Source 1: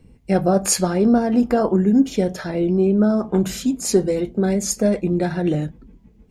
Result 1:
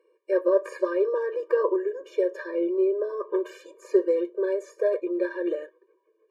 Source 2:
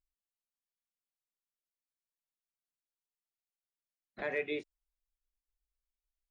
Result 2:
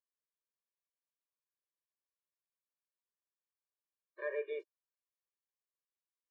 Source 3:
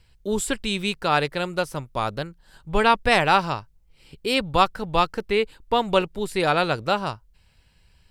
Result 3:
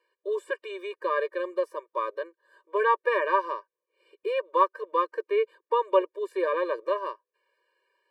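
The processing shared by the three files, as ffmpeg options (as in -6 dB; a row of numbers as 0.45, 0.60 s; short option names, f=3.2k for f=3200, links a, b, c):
-filter_complex "[0:a]acrossover=split=2600[a][b];[b]acompressor=threshold=-33dB:ratio=4:attack=1:release=60[c];[a][c]amix=inputs=2:normalize=0,acrossover=split=350 2000:gain=0.0891 1 0.126[d][e][f];[d][e][f]amix=inputs=3:normalize=0,afftfilt=real='re*eq(mod(floor(b*sr/1024/310),2),1)':imag='im*eq(mod(floor(b*sr/1024/310),2),1)':win_size=1024:overlap=0.75,volume=1dB"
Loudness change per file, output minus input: -7.0, -3.5, -5.0 LU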